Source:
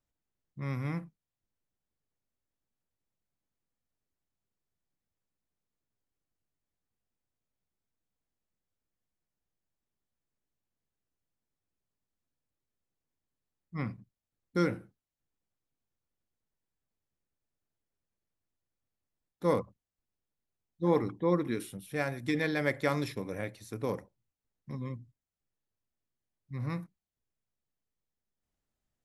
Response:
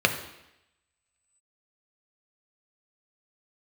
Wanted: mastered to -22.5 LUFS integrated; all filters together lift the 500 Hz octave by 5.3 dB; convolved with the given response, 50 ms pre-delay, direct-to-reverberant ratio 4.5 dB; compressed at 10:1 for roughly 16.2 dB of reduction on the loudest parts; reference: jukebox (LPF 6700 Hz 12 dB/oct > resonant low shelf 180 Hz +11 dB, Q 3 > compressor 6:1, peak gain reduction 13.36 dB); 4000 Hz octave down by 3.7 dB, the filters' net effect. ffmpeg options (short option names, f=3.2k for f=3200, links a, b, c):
-filter_complex "[0:a]equalizer=f=500:t=o:g=8,equalizer=f=4k:t=o:g=-4,acompressor=threshold=-33dB:ratio=10,asplit=2[a][b];[1:a]atrim=start_sample=2205,adelay=50[c];[b][c]afir=irnorm=-1:irlink=0,volume=-20.5dB[d];[a][d]amix=inputs=2:normalize=0,lowpass=6.7k,lowshelf=f=180:t=q:w=3:g=11,acompressor=threshold=-30dB:ratio=6,volume=14dB"